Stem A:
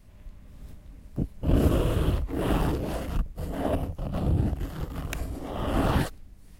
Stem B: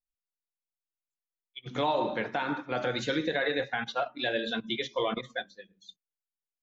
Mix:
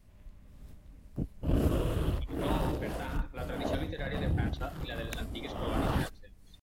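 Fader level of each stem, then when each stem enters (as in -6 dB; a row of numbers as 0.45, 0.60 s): -6.0, -11.0 dB; 0.00, 0.65 s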